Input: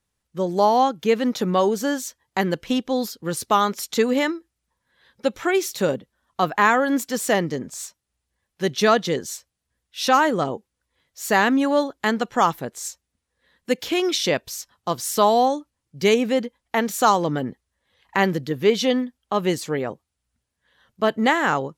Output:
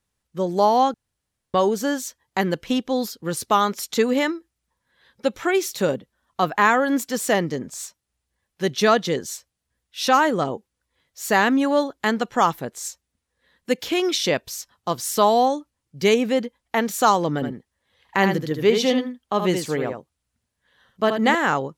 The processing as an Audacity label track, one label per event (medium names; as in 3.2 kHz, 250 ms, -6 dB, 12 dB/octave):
0.940000	1.540000	room tone
17.340000	21.350000	delay 77 ms -6.5 dB